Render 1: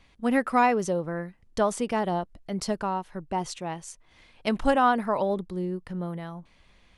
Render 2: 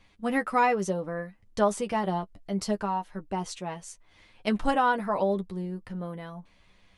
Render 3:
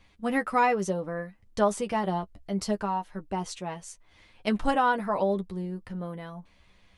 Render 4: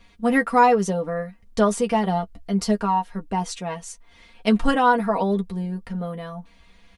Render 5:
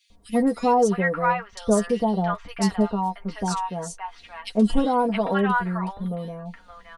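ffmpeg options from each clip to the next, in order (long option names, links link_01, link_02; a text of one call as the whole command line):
ffmpeg -i in.wav -af "flanger=delay=9.5:depth=1.1:regen=21:speed=0.68:shape=triangular,volume=2dB" out.wav
ffmpeg -i in.wav -af "equalizer=frequency=65:width=5.7:gain=9.5" out.wav
ffmpeg -i in.wav -af "aecho=1:1:4.3:0.67,volume=4.5dB" out.wav
ffmpeg -i in.wav -filter_complex "[0:a]acrossover=split=960|2900[link_01][link_02][link_03];[link_01]adelay=100[link_04];[link_02]adelay=670[link_05];[link_04][link_05][link_03]amix=inputs=3:normalize=0" out.wav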